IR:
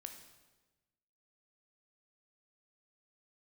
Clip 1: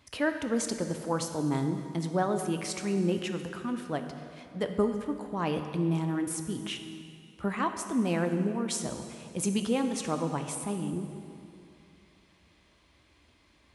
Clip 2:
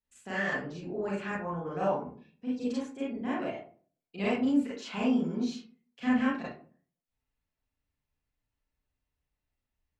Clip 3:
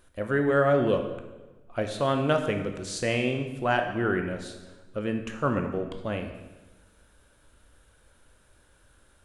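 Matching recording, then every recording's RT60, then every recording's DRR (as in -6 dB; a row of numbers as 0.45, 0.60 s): 3; 2.6, 0.45, 1.2 s; 6.5, -8.0, 5.0 dB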